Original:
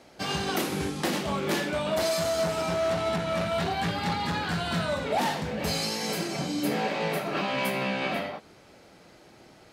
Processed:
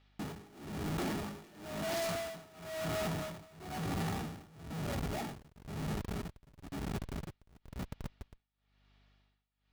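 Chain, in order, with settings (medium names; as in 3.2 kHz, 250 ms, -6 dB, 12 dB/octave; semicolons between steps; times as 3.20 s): Doppler pass-by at 2.37 s, 18 m/s, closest 14 m; bass shelf 340 Hz +7.5 dB; de-hum 63.47 Hz, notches 6; Schmitt trigger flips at -35 dBFS; band noise 310–4000 Hz -75 dBFS; comb of notches 520 Hz; saturation -34 dBFS, distortion -15 dB; hum 50 Hz, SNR 31 dB; tremolo 1 Hz, depth 94%; trim +2 dB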